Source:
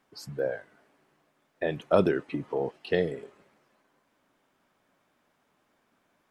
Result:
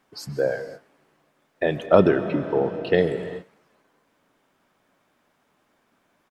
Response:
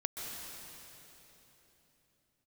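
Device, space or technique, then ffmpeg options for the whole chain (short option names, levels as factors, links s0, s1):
keyed gated reverb: -filter_complex "[0:a]asettb=1/sr,asplit=3[s0][s1][s2];[s0]atrim=end=1.864[s3];[s1]atrim=start=1.86:end=2.98,asetpts=PTS-STARTPTS,afade=t=in:d=0.004:c=qsin,afade=t=out:st=1.116:d=0.004:c=qsin,aemphasis=mode=reproduction:type=50fm[s4];[s2]atrim=start=2.976[s5];[s3][s4]acrossfade=d=0.004:c1=hsin:c2=qsin[s6];[s6][s5]acrossfade=d=0.004:c1=qsin:c2=hsin,asplit=3[s7][s8][s9];[1:a]atrim=start_sample=2205[s10];[s8][s10]afir=irnorm=-1:irlink=0[s11];[s9]apad=whole_len=277877[s12];[s11][s12]sidechaingate=range=0.0224:threshold=0.00178:ratio=16:detection=peak,volume=0.398[s13];[s7][s13]amix=inputs=2:normalize=0,asplit=2[s14][s15];[s15]adelay=93.29,volume=0.0447,highshelf=f=4000:g=-2.1[s16];[s14][s16]amix=inputs=2:normalize=0,volume=1.58"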